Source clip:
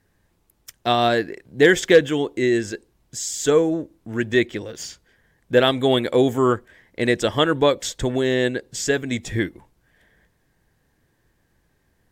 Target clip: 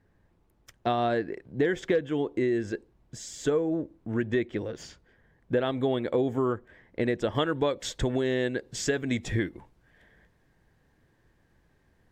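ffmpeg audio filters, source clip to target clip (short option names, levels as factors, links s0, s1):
-af "asetnsamples=n=441:p=0,asendcmd='7.35 lowpass f 3300',lowpass=f=1300:p=1,acompressor=threshold=0.0631:ratio=4"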